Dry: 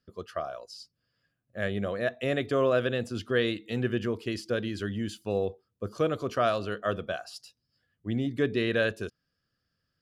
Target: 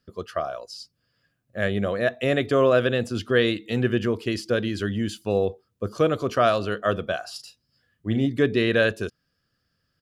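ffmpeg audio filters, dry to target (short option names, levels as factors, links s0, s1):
-filter_complex "[0:a]asplit=3[s0][s1][s2];[s0]afade=t=out:st=7.22:d=0.02[s3];[s1]asplit=2[s4][s5];[s5]adelay=37,volume=0.398[s6];[s4][s6]amix=inputs=2:normalize=0,afade=t=in:st=7.22:d=0.02,afade=t=out:st=8.25:d=0.02[s7];[s2]afade=t=in:st=8.25:d=0.02[s8];[s3][s7][s8]amix=inputs=3:normalize=0,volume=2"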